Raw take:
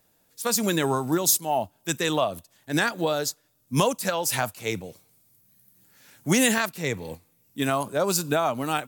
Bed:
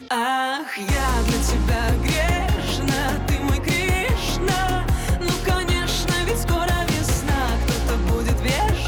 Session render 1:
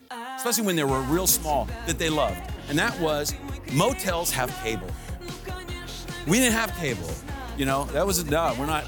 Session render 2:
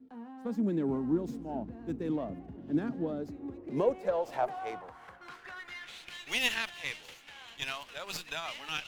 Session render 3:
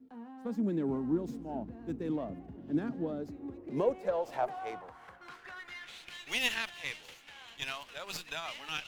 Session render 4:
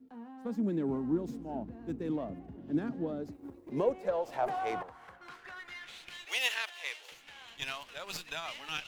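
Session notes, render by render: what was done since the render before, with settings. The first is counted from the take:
mix in bed −14 dB
band-pass filter sweep 250 Hz → 2,900 Hz, 0:03.18–0:06.21; windowed peak hold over 3 samples
level −1.5 dB
0:03.32–0:03.72: mu-law and A-law mismatch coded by A; 0:04.42–0:04.83: envelope flattener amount 50%; 0:06.25–0:07.12: high-pass filter 420 Hz 24 dB per octave

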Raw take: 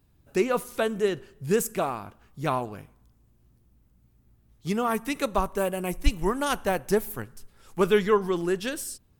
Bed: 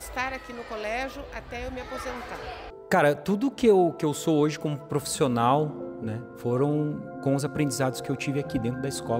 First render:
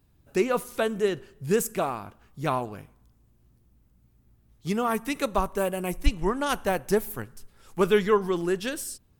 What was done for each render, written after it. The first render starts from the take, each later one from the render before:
0:06.06–0:06.49: high-frequency loss of the air 51 metres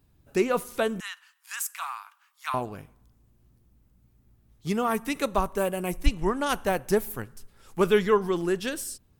0:01.00–0:02.54: Butterworth high-pass 950 Hz 48 dB per octave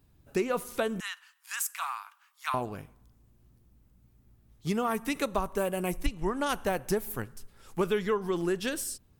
downward compressor 4 to 1, threshold −25 dBFS, peak gain reduction 10.5 dB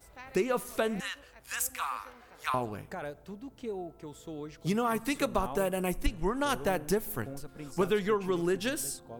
mix in bed −18.5 dB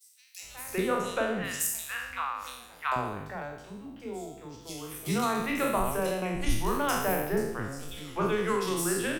peak hold with a decay on every bin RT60 0.85 s
three-band delay without the direct sound highs, mids, lows 380/420 ms, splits 430/3,300 Hz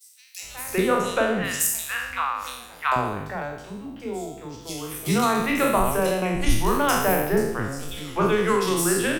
level +7 dB

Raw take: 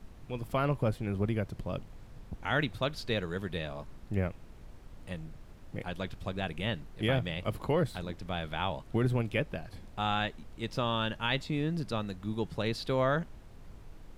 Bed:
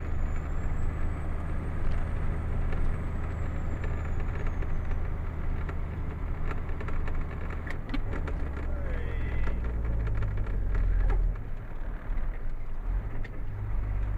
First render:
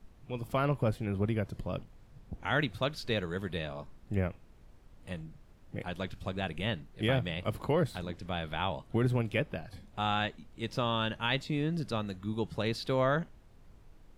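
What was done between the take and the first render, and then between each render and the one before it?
noise reduction from a noise print 7 dB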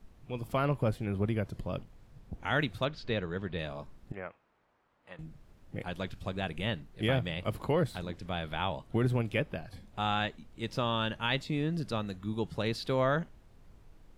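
0:02.85–0:03.59: high-frequency loss of the air 140 metres
0:04.12–0:05.19: resonant band-pass 1,200 Hz, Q 0.99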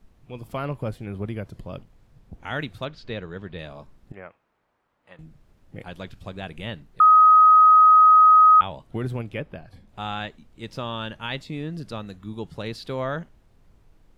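0:07.00–0:08.61: beep over 1,260 Hz −9.5 dBFS
0:09.24–0:09.89: high-shelf EQ 3,600 Hz −7 dB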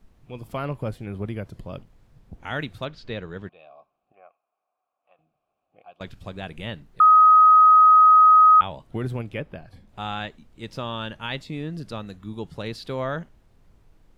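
0:03.49–0:06.01: formant filter a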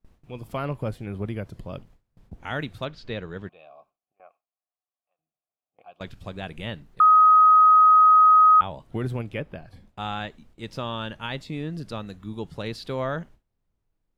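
noise gate with hold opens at −44 dBFS
dynamic equaliser 2,800 Hz, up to −5 dB, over −33 dBFS, Q 0.81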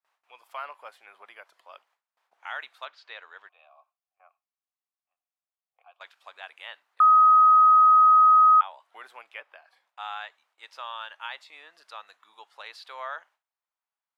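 high-pass filter 870 Hz 24 dB per octave
high-shelf EQ 3,200 Hz −9.5 dB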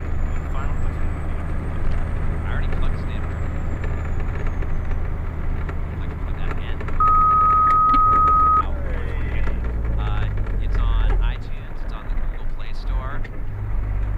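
mix in bed +7 dB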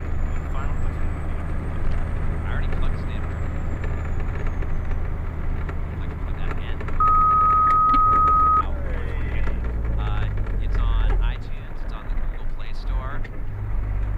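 level −1.5 dB

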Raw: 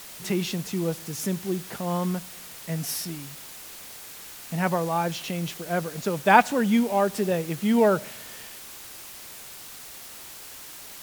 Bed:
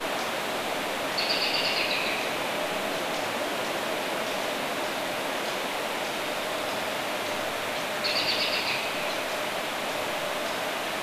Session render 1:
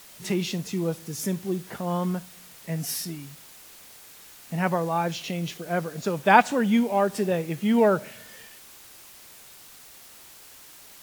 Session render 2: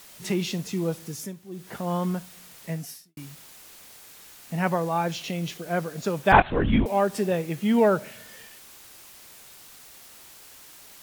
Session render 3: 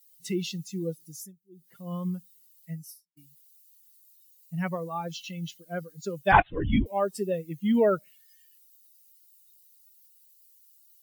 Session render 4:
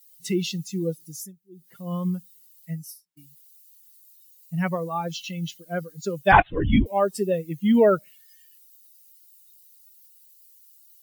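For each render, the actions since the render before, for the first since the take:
noise reduction from a noise print 6 dB
0:01.08–0:01.76: duck −13 dB, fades 0.26 s; 0:02.70–0:03.17: fade out quadratic; 0:06.32–0:06.86: linear-prediction vocoder at 8 kHz whisper
spectral dynamics exaggerated over time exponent 2
level +5 dB; brickwall limiter −3 dBFS, peak gain reduction 2.5 dB

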